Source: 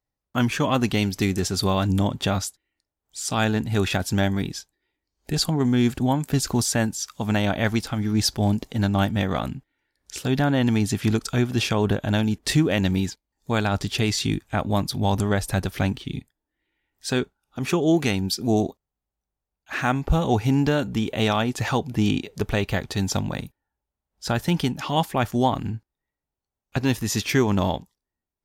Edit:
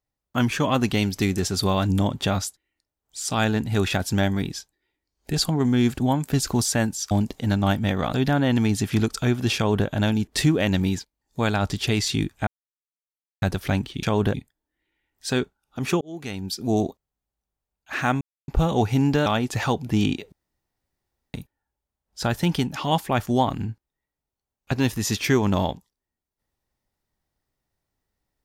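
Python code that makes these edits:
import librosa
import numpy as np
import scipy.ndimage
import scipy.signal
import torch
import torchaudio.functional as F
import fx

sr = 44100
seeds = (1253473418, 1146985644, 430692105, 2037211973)

y = fx.edit(x, sr, fx.cut(start_s=7.11, length_s=1.32),
    fx.cut(start_s=9.45, length_s=0.79),
    fx.duplicate(start_s=11.67, length_s=0.31, to_s=16.14),
    fx.silence(start_s=14.58, length_s=0.95),
    fx.fade_in_span(start_s=17.81, length_s=0.85),
    fx.insert_silence(at_s=20.01, length_s=0.27),
    fx.cut(start_s=20.79, length_s=0.52),
    fx.room_tone_fill(start_s=22.37, length_s=1.02), tone=tone)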